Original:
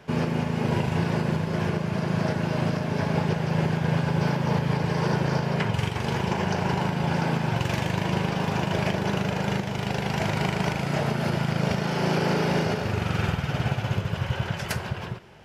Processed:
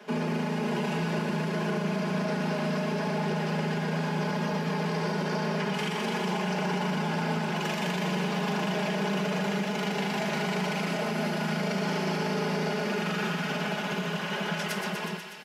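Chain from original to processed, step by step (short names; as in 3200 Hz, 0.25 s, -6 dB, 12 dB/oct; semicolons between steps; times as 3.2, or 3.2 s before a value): steep high-pass 160 Hz 96 dB/oct; comb 4.8 ms; limiter -21.5 dBFS, peak gain reduction 10 dB; on a send: thinning echo 0.122 s, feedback 80%, high-pass 990 Hz, level -6 dB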